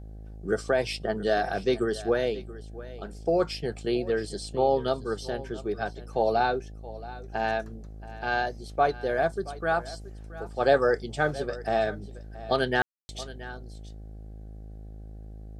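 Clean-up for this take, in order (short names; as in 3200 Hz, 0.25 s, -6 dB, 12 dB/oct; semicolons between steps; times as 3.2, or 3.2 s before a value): de-hum 53 Hz, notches 15; room tone fill 12.82–13.09; inverse comb 0.676 s -17 dB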